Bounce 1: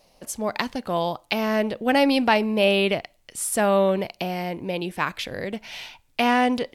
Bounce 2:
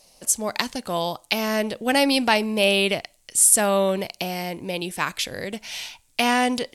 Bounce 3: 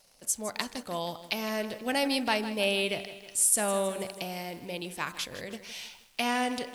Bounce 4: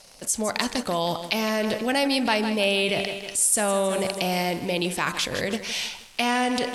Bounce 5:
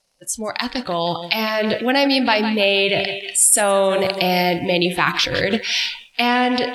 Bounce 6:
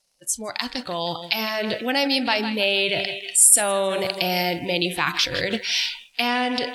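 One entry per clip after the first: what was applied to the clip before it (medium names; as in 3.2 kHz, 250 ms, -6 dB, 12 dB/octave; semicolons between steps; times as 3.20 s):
peaking EQ 8.5 kHz +15 dB 1.8 oct; trim -1.5 dB
de-hum 94.93 Hz, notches 21; crackle 200 per s -39 dBFS; bit-crushed delay 159 ms, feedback 55%, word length 7-bit, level -13 dB; trim -8.5 dB
in parallel at +0.5 dB: compressor with a negative ratio -37 dBFS, ratio -1; on the sum: low-pass 11 kHz 12 dB/octave; trim +3.5 dB
spectral noise reduction 18 dB; level rider gain up to 11.5 dB
treble shelf 3.2 kHz +7.5 dB; trim -6.5 dB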